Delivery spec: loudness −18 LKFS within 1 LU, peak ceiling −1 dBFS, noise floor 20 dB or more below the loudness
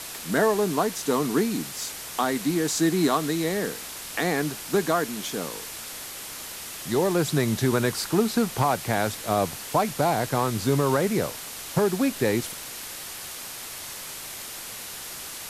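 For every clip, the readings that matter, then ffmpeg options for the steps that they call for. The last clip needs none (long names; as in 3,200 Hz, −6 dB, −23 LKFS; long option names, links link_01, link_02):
background noise floor −38 dBFS; target noise floor −46 dBFS; integrated loudness −26.0 LKFS; sample peak −10.5 dBFS; target loudness −18.0 LKFS
→ -af "afftdn=noise_reduction=8:noise_floor=-38"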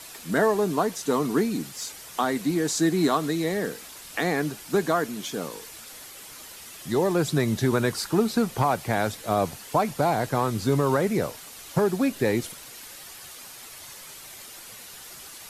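background noise floor −44 dBFS; target noise floor −46 dBFS
→ -af "afftdn=noise_reduction=6:noise_floor=-44"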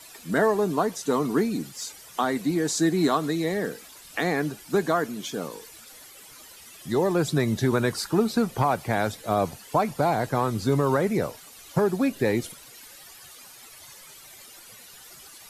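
background noise floor −48 dBFS; integrated loudness −25.5 LKFS; sample peak −11.0 dBFS; target loudness −18.0 LKFS
→ -af "volume=7.5dB"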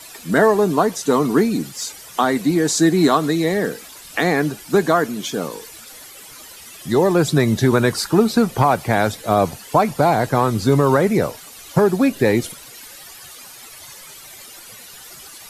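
integrated loudness −18.0 LKFS; sample peak −3.5 dBFS; background noise floor −40 dBFS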